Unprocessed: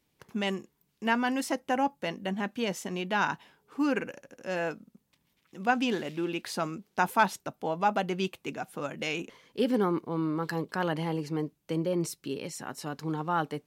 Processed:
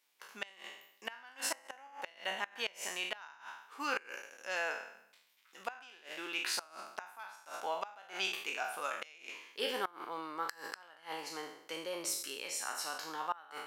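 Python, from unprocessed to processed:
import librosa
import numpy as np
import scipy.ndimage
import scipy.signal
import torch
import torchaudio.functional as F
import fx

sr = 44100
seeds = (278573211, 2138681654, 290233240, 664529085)

y = fx.spec_trails(x, sr, decay_s=0.72)
y = scipy.signal.sosfilt(scipy.signal.butter(2, 940.0, 'highpass', fs=sr, output='sos'), y)
y = fx.gate_flip(y, sr, shuts_db=-22.0, range_db=-24)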